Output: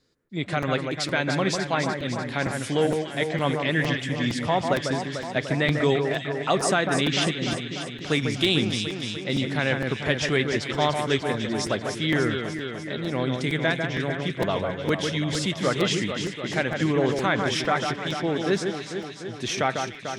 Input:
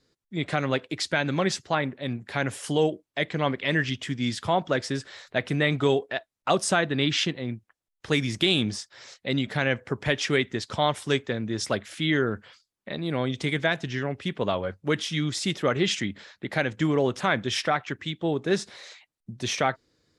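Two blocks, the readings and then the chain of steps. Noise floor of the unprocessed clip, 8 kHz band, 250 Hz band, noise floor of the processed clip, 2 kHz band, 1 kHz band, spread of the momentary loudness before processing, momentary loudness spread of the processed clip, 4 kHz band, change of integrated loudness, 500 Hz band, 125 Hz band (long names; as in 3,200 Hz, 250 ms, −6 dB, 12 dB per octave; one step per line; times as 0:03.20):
−83 dBFS, +1.5 dB, +2.0 dB, −37 dBFS, +1.5 dB, +2.0 dB, 10 LU, 7 LU, +1.5 dB, +1.5 dB, +2.0 dB, +2.0 dB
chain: delay that swaps between a low-pass and a high-pass 148 ms, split 2,100 Hz, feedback 81%, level −5 dB
regular buffer underruns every 0.46 s, samples 256, repeat, from 0:00.62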